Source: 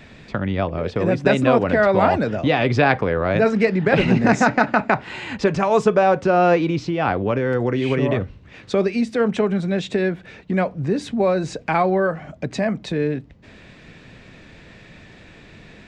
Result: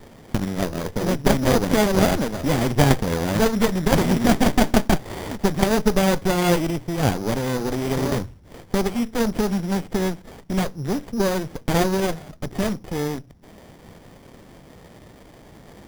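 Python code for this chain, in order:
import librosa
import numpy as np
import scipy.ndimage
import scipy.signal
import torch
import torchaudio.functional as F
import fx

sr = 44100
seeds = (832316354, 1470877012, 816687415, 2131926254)

y = np.repeat(scipy.signal.resample_poly(x, 1, 8), 8)[:len(x)]
y = fx.high_shelf(y, sr, hz=6600.0, db=11.0)
y = fx.hum_notches(y, sr, base_hz=60, count=2)
y = fx.running_max(y, sr, window=33)
y = y * 10.0 ** (-3.0 / 20.0)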